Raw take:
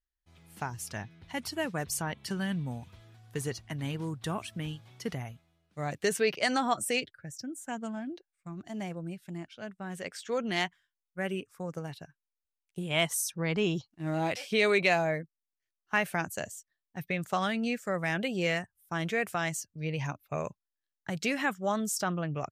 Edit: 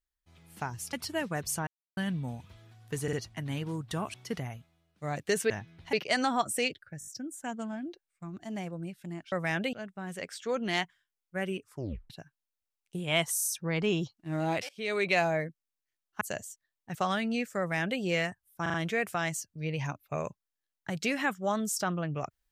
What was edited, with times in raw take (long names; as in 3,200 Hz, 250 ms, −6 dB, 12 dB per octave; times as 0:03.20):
0:00.93–0:01.36: move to 0:06.25
0:02.10–0:02.40: silence
0:03.46: stutter 0.05 s, 3 plays
0:04.47–0:04.89: remove
0:07.31: stutter 0.02 s, 5 plays
0:11.53: tape stop 0.40 s
0:13.18: stutter 0.03 s, 4 plays
0:14.43–0:14.96: fade in, from −21 dB
0:15.95–0:16.28: remove
0:17.02–0:17.27: remove
0:17.91–0:18.32: duplicate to 0:09.56
0:18.94: stutter 0.04 s, 4 plays